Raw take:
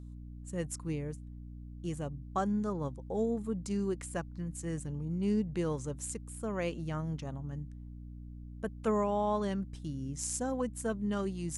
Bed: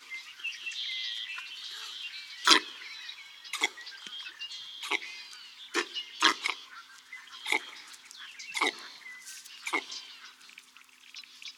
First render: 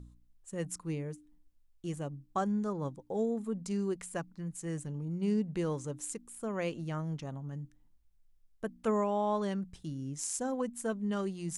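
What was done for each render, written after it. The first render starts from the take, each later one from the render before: de-hum 60 Hz, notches 5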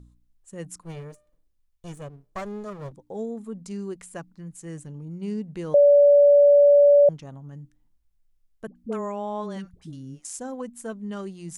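0.83–2.92 s: comb filter that takes the minimum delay 1.7 ms; 5.74–7.09 s: bleep 575 Hz -11 dBFS; 8.67–10.25 s: phase dispersion highs, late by 84 ms, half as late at 560 Hz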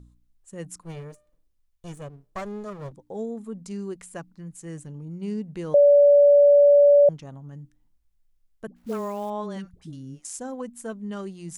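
8.76–9.30 s: companded quantiser 6-bit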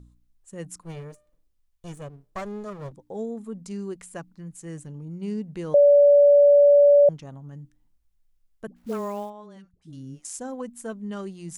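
9.19–9.98 s: dip -12.5 dB, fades 0.14 s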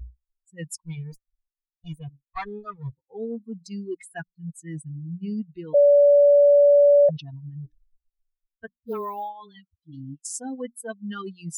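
expander on every frequency bin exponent 3; reverse; upward compressor, threshold -23 dBFS; reverse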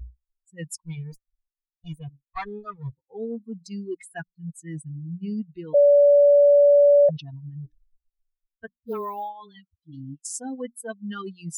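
no audible change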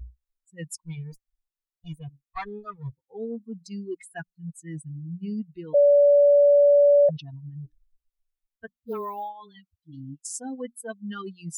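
trim -1.5 dB

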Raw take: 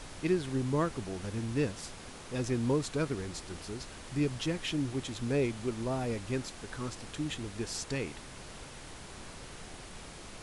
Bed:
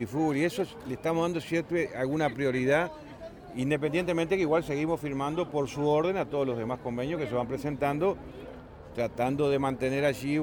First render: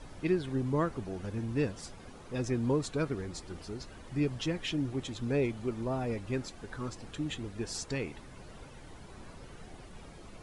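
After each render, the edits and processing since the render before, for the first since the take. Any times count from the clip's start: noise reduction 11 dB, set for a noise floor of -48 dBFS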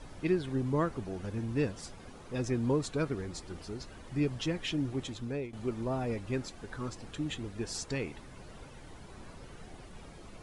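5.05–5.53 s: fade out, to -14.5 dB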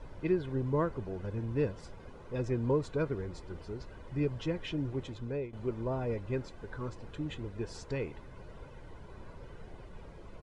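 low-pass 1.5 kHz 6 dB/octave; comb 2 ms, depth 35%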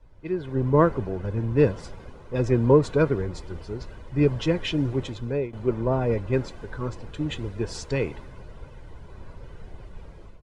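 level rider gain up to 10 dB; three bands expanded up and down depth 40%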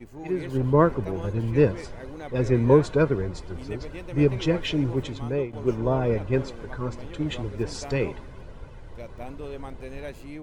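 add bed -11.5 dB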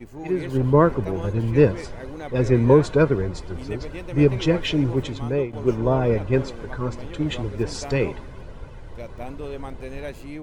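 trim +3.5 dB; peak limiter -3 dBFS, peak gain reduction 2 dB

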